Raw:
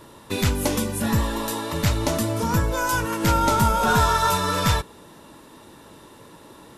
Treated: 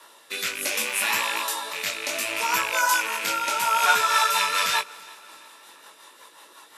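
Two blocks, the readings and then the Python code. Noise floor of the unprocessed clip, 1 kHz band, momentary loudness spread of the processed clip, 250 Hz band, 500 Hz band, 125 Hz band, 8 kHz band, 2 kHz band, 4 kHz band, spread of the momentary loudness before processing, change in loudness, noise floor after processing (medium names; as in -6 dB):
-48 dBFS, -1.5 dB, 9 LU, -19.5 dB, -8.5 dB, under -30 dB, +2.5 dB, +5.0 dB, +3.5 dB, 8 LU, -0.5 dB, -52 dBFS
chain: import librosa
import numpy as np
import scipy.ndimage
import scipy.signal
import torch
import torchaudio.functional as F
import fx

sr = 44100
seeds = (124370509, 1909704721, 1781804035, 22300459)

y = fx.rattle_buzz(x, sr, strikes_db=-31.0, level_db=-18.0)
y = scipy.signal.sosfilt(scipy.signal.butter(2, 1000.0, 'highpass', fs=sr, output='sos'), y)
y = fx.chorus_voices(y, sr, voices=2, hz=0.79, base_ms=19, depth_ms=3.8, mix_pct=40)
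y = fx.rotary_switch(y, sr, hz=0.65, then_hz=5.5, switch_at_s=3.53)
y = fx.echo_feedback(y, sr, ms=335, feedback_pct=55, wet_db=-23.0)
y = F.gain(torch.from_numpy(y), 8.5).numpy()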